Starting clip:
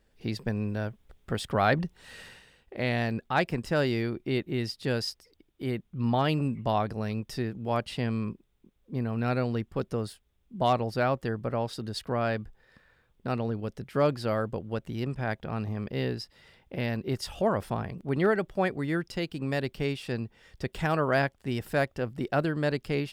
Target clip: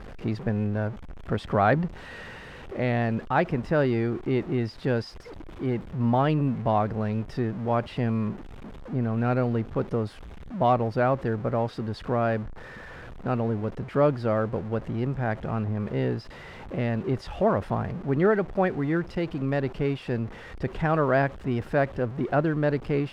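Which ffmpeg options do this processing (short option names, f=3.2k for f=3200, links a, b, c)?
-af "aeval=exprs='val(0)+0.5*0.0141*sgn(val(0))':c=same,lowpass=1.4k,aemphasis=mode=production:type=75fm,volume=3.5dB"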